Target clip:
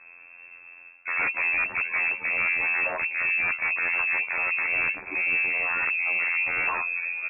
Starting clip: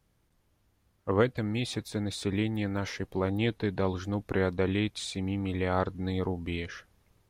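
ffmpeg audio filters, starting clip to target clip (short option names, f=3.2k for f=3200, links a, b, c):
-filter_complex "[0:a]afftfilt=real='hypot(re,im)*cos(PI*b)':imag='0':win_size=2048:overlap=0.75,asplit=2[a][b];[b]adelay=762,lowpass=f=1.3k:p=1,volume=-19.5dB,asplit=2[c][d];[d]adelay=762,lowpass=f=1.3k:p=1,volume=0.33,asplit=2[e][f];[f]adelay=762,lowpass=f=1.3k:p=1,volume=0.33[g];[a][c][e][g]amix=inputs=4:normalize=0,areverse,acompressor=threshold=-40dB:ratio=12,areverse,bandreject=f=880:w=15,aresample=8000,aeval=exprs='0.0316*sin(PI/2*5.01*val(0)/0.0316)':c=same,aresample=44100,lowpass=f=2.3k:t=q:w=0.5098,lowpass=f=2.3k:t=q:w=0.6013,lowpass=f=2.3k:t=q:w=0.9,lowpass=f=2.3k:t=q:w=2.563,afreqshift=-2700,volume=8.5dB"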